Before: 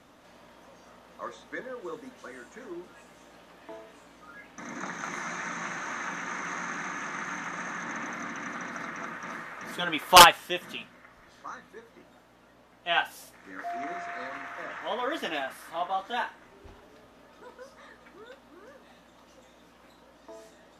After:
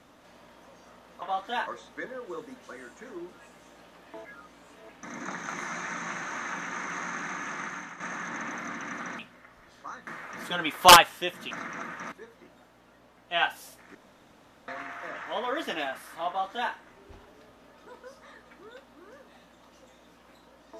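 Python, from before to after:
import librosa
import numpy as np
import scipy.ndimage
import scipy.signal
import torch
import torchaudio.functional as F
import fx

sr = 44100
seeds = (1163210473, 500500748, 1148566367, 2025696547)

y = fx.edit(x, sr, fx.reverse_span(start_s=3.8, length_s=0.64),
    fx.fade_out_to(start_s=7.16, length_s=0.39, floor_db=-10.5),
    fx.swap(start_s=8.74, length_s=0.61, other_s=10.79, other_length_s=0.88),
    fx.room_tone_fill(start_s=13.5, length_s=0.73),
    fx.duplicate(start_s=15.83, length_s=0.45, to_s=1.22), tone=tone)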